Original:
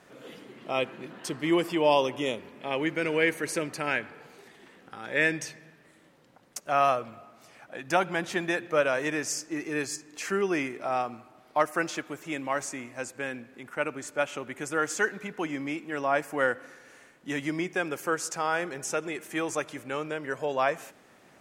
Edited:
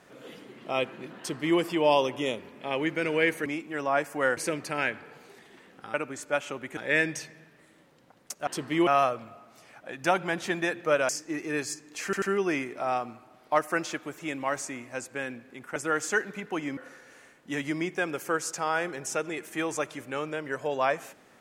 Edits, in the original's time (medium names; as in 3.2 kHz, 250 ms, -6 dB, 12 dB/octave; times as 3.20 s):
1.19–1.59 s: copy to 6.73 s
8.95–9.31 s: delete
10.26 s: stutter 0.09 s, 3 plays
13.80–14.63 s: move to 5.03 s
15.64–16.55 s: move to 3.46 s